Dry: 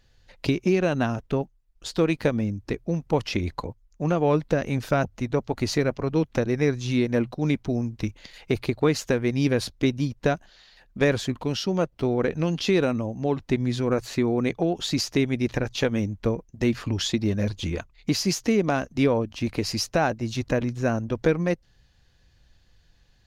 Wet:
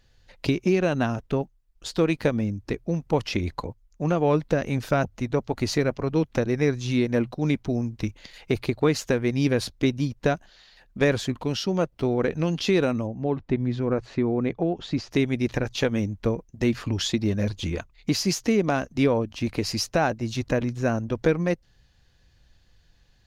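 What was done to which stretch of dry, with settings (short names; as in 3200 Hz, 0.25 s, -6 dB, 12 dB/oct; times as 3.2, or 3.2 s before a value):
13.07–15.11 tape spacing loss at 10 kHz 25 dB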